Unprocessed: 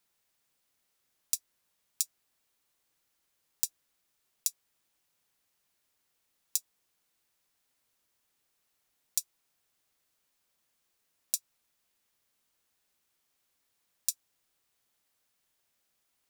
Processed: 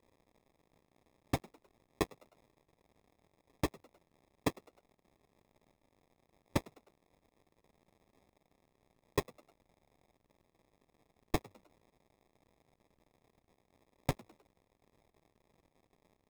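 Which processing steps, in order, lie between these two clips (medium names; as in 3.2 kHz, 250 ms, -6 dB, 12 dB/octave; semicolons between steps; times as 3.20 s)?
CVSD coder 64 kbps; sample-and-hold 30×; frequency-shifting echo 103 ms, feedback 46%, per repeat +94 Hz, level -23.5 dB; trim +8 dB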